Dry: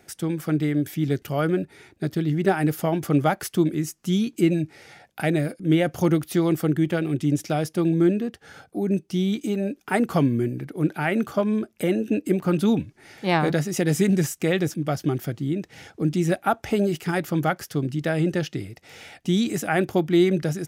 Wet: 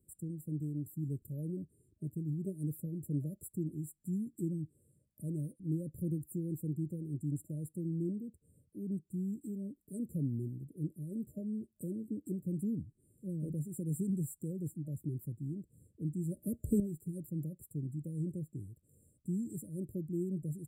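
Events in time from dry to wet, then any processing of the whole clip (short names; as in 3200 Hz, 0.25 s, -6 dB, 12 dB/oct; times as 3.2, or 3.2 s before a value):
16.37–16.8 gain +10.5 dB
whole clip: passive tone stack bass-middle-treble 6-0-2; FFT band-reject 620–7200 Hz; low shelf 370 Hz +3.5 dB; gain +1 dB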